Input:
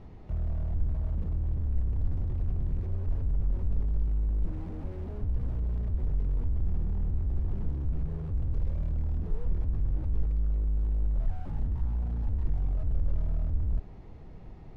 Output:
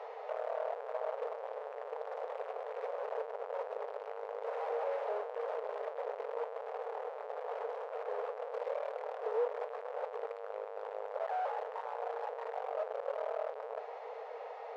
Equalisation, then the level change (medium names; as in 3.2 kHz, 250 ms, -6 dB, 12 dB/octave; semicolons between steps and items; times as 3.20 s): brick-wall FIR high-pass 430 Hz; low-pass 1.1 kHz 6 dB/octave; +18.0 dB